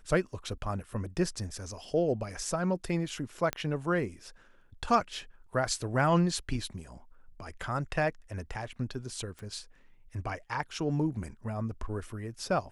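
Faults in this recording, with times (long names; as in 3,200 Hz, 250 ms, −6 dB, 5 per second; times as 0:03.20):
0:03.53: click −15 dBFS
0:09.39: click −31 dBFS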